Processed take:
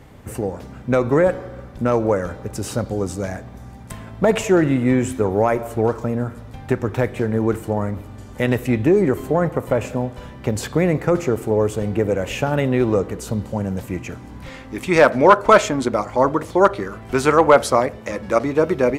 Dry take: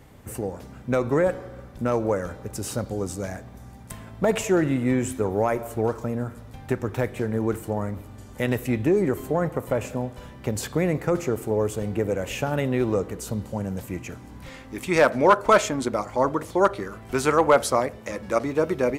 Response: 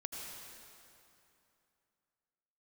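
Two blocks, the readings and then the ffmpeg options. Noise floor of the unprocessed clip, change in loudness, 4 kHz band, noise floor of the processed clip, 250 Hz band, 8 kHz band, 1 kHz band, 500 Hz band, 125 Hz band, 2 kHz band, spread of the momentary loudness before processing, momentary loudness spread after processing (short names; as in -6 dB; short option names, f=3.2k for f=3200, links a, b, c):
-44 dBFS, +5.5 dB, +4.0 dB, -38 dBFS, +5.5 dB, +1.5 dB, +5.5 dB, +5.5 dB, +5.5 dB, +5.0 dB, 15 LU, 15 LU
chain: -af "highshelf=f=7k:g=-7.5,volume=5.5dB"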